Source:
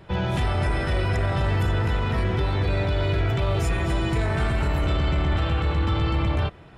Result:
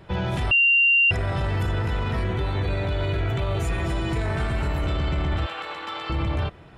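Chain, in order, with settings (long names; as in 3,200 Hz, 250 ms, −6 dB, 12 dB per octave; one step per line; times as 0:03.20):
0:02.27–0:03.68: notch filter 5,200 Hz, Q 5.7
0:05.46–0:06.10: high-pass filter 690 Hz 12 dB per octave
brickwall limiter −17.5 dBFS, peak gain reduction 3.5 dB
0:00.51–0:01.11: beep over 2,770 Hz −14.5 dBFS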